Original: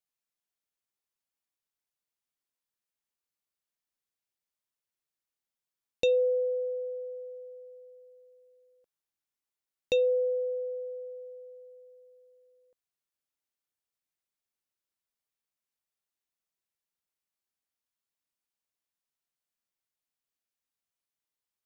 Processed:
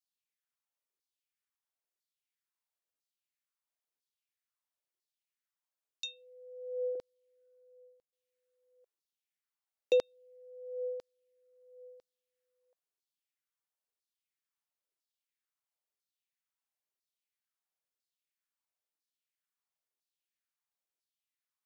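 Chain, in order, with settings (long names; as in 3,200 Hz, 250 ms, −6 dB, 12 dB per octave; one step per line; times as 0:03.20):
0:06.95–0:08.13: downward expander −44 dBFS
auto-filter high-pass saw down 1 Hz 330–4,900 Hz
level −5.5 dB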